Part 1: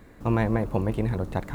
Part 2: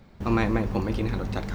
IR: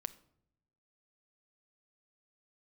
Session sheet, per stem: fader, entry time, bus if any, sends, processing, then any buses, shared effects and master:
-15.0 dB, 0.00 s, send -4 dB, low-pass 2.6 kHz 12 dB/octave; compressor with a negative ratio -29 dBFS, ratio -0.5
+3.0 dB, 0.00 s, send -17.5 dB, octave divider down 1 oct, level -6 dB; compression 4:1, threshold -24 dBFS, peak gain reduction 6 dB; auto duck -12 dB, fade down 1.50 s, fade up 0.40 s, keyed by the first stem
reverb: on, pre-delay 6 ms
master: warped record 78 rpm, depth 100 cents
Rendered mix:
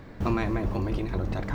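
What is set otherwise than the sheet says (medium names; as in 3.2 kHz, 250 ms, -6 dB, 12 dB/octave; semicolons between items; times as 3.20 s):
stem 1 -15.0 dB -> -4.5 dB; master: missing warped record 78 rpm, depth 100 cents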